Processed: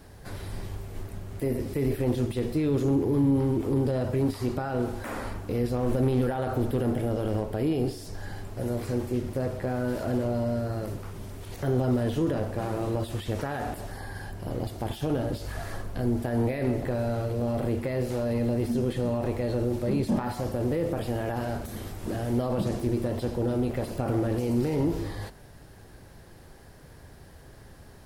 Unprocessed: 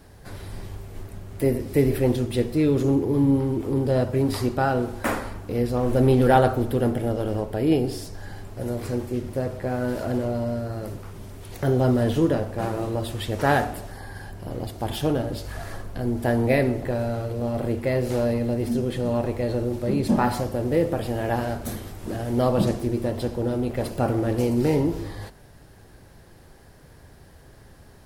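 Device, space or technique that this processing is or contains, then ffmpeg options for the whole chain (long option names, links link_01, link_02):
de-esser from a sidechain: -filter_complex "[0:a]asplit=2[link_01][link_02];[link_02]highpass=frequency=6200:poles=1,apad=whole_len=1237068[link_03];[link_01][link_03]sidechaincompress=threshold=-45dB:ratio=8:attack=1.9:release=24"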